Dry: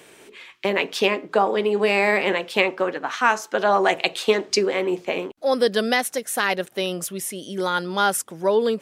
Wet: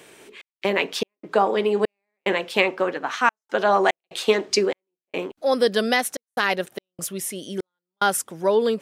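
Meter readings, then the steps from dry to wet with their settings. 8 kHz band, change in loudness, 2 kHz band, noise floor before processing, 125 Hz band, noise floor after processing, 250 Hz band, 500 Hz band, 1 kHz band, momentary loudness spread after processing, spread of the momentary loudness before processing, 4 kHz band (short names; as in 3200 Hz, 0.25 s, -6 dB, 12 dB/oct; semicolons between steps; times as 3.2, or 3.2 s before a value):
-1.0 dB, -1.0 dB, -2.0 dB, -51 dBFS, n/a, under -85 dBFS, -1.5 dB, -1.0 dB, -1.0 dB, 11 LU, 8 LU, -1.5 dB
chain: step gate "xx.xx.xxx..xxx" 73 bpm -60 dB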